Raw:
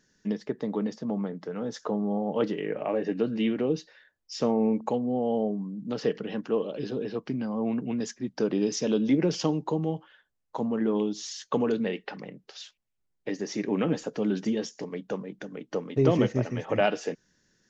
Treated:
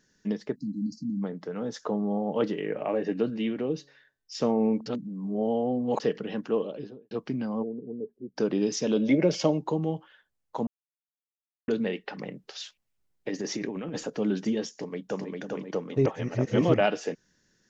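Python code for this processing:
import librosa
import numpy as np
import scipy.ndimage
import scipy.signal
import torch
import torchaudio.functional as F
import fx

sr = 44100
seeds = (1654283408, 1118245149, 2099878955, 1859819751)

y = fx.spec_erase(x, sr, start_s=0.55, length_s=0.68, low_hz=320.0, high_hz=4000.0)
y = fx.comb_fb(y, sr, f0_hz=140.0, decay_s=0.59, harmonics='all', damping=0.0, mix_pct=30, at=(3.3, 4.35))
y = fx.studio_fade_out(y, sr, start_s=6.57, length_s=0.54)
y = fx.ladder_lowpass(y, sr, hz=480.0, resonance_pct=70, at=(7.62, 8.35), fade=0.02)
y = fx.small_body(y, sr, hz=(590.0, 2200.0), ring_ms=45, db=14, at=(8.96, 9.58))
y = fx.over_compress(y, sr, threshold_db=-32.0, ratio=-1.0, at=(12.18, 14.1))
y = fx.echo_throw(y, sr, start_s=14.69, length_s=0.62, ms=400, feedback_pct=20, wet_db=-2.5)
y = fx.edit(y, sr, fx.reverse_span(start_s=4.86, length_s=1.14),
    fx.silence(start_s=10.67, length_s=1.01),
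    fx.reverse_span(start_s=16.06, length_s=0.68), tone=tone)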